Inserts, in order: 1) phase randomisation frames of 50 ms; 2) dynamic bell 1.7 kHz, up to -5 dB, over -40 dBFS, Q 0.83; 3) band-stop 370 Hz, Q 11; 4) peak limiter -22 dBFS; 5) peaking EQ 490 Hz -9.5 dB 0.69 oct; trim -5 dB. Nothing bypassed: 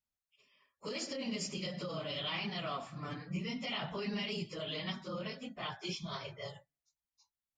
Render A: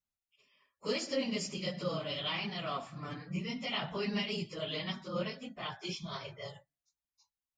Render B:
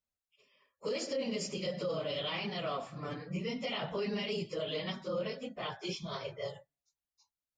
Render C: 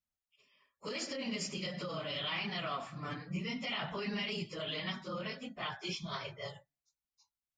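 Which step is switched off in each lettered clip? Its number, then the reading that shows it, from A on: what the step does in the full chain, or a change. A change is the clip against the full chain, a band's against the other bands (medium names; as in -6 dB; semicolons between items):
4, crest factor change +3.5 dB; 5, 500 Hz band +6.5 dB; 2, 2 kHz band +3.0 dB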